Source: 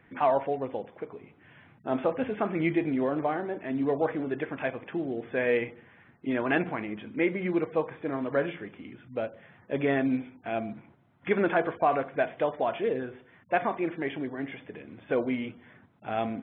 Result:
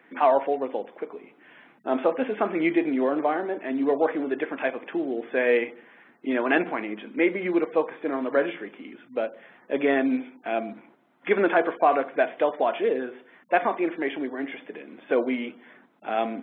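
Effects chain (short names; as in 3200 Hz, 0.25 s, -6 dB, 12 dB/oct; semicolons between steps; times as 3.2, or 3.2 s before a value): HPF 240 Hz 24 dB/oct; gain +4.5 dB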